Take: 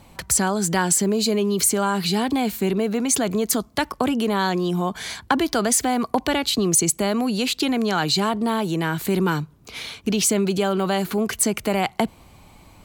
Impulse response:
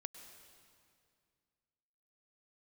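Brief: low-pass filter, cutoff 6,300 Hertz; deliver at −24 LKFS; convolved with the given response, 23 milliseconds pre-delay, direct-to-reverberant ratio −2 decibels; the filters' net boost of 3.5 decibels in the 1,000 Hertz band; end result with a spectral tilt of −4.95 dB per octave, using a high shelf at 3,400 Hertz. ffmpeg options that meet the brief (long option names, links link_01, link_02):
-filter_complex "[0:a]lowpass=6300,equalizer=frequency=1000:width_type=o:gain=5,highshelf=frequency=3400:gain=-6.5,asplit=2[link_01][link_02];[1:a]atrim=start_sample=2205,adelay=23[link_03];[link_02][link_03]afir=irnorm=-1:irlink=0,volume=6dB[link_04];[link_01][link_04]amix=inputs=2:normalize=0,volume=-6dB"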